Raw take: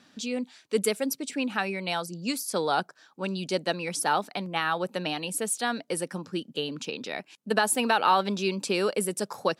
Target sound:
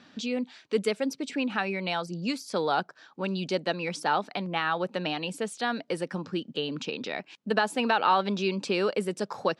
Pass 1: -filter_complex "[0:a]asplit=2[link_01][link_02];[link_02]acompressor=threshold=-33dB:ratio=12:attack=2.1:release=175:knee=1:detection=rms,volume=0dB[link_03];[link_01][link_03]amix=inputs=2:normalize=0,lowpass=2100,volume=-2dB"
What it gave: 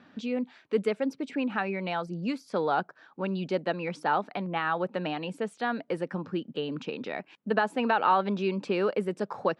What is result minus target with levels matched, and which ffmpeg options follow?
4,000 Hz band −6.5 dB
-filter_complex "[0:a]asplit=2[link_01][link_02];[link_02]acompressor=threshold=-33dB:ratio=12:attack=2.1:release=175:knee=1:detection=rms,volume=0dB[link_03];[link_01][link_03]amix=inputs=2:normalize=0,lowpass=4500,volume=-2dB"

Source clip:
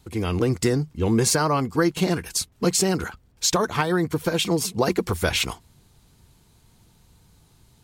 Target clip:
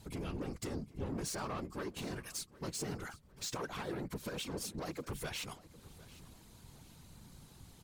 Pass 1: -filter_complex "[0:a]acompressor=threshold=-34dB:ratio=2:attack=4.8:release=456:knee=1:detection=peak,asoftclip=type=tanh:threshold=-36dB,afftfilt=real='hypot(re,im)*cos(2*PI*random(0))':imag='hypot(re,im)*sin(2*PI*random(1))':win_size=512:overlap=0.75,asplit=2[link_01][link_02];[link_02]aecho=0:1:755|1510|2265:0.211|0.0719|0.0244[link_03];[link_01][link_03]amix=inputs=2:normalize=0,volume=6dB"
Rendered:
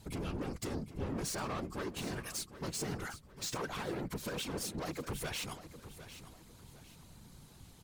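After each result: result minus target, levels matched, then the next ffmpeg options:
downward compressor: peak gain reduction −5 dB; echo-to-direct +6.5 dB
-filter_complex "[0:a]acompressor=threshold=-43.5dB:ratio=2:attack=4.8:release=456:knee=1:detection=peak,asoftclip=type=tanh:threshold=-36dB,afftfilt=real='hypot(re,im)*cos(2*PI*random(0))':imag='hypot(re,im)*sin(2*PI*random(1))':win_size=512:overlap=0.75,asplit=2[link_01][link_02];[link_02]aecho=0:1:755|1510|2265:0.211|0.0719|0.0244[link_03];[link_01][link_03]amix=inputs=2:normalize=0,volume=6dB"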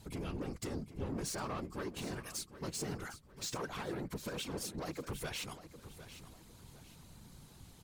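echo-to-direct +6.5 dB
-filter_complex "[0:a]acompressor=threshold=-43.5dB:ratio=2:attack=4.8:release=456:knee=1:detection=peak,asoftclip=type=tanh:threshold=-36dB,afftfilt=real='hypot(re,im)*cos(2*PI*random(0))':imag='hypot(re,im)*sin(2*PI*random(1))':win_size=512:overlap=0.75,asplit=2[link_01][link_02];[link_02]aecho=0:1:755|1510|2265:0.1|0.034|0.0116[link_03];[link_01][link_03]amix=inputs=2:normalize=0,volume=6dB"

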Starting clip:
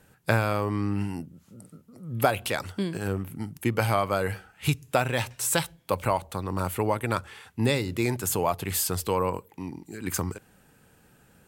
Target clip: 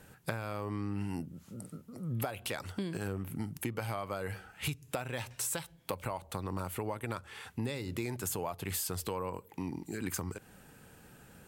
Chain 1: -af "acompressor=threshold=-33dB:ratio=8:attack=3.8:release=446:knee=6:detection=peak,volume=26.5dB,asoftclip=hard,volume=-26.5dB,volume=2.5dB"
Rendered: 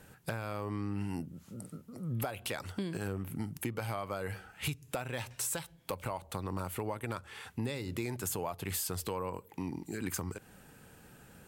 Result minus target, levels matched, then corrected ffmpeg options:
gain into a clipping stage and back: distortion +38 dB
-af "acompressor=threshold=-33dB:ratio=8:attack=3.8:release=446:knee=6:detection=peak,volume=16.5dB,asoftclip=hard,volume=-16.5dB,volume=2.5dB"

